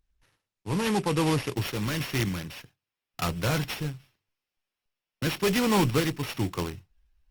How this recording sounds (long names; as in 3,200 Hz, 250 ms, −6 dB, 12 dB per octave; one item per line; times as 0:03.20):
a buzz of ramps at a fixed pitch in blocks of 8 samples
sample-and-hold tremolo 3.5 Hz
aliases and images of a low sample rate 8,200 Hz, jitter 20%
Opus